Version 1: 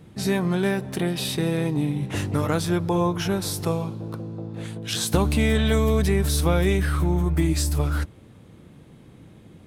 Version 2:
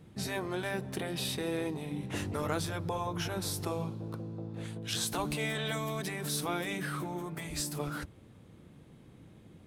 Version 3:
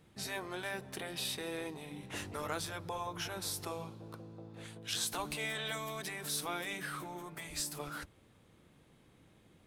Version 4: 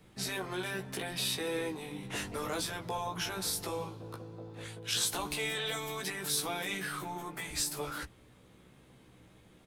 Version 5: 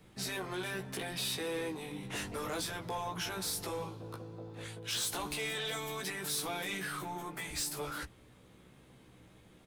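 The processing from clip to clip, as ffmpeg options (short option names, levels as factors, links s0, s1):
-af "afftfilt=real='re*lt(hypot(re,im),0.501)':imag='im*lt(hypot(re,im),0.501)':win_size=1024:overlap=0.75,volume=0.447"
-af "equalizer=f=140:w=0.31:g=-9.5,volume=0.841"
-filter_complex "[0:a]flanger=delay=0.4:depth=8:regen=88:speed=0.85:shape=sinusoidal,acrossover=split=290|720|2300[s0][s1][s2][s3];[s2]alimiter=level_in=10:limit=0.0631:level=0:latency=1,volume=0.1[s4];[s0][s1][s4][s3]amix=inputs=4:normalize=0,asplit=2[s5][s6];[s6]adelay=16,volume=0.631[s7];[s5][s7]amix=inputs=2:normalize=0,volume=2.51"
-af "asoftclip=type=tanh:threshold=0.0316"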